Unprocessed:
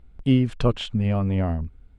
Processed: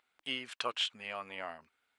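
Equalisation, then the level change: high-pass 1.3 kHz 12 dB/octave; 0.0 dB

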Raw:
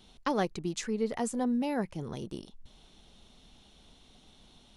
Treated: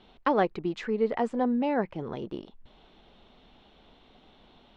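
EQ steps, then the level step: resonant low-pass 7.3 kHz, resonance Q 2.1; distance through air 430 m; tone controls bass -10 dB, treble -3 dB; +8.0 dB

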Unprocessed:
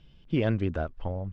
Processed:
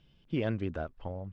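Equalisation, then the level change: bass shelf 70 Hz -8 dB; -4.5 dB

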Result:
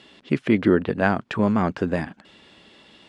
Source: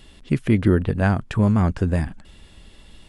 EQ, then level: high-pass 240 Hz 12 dB/octave; low-pass 4.7 kHz 12 dB/octave; +3.0 dB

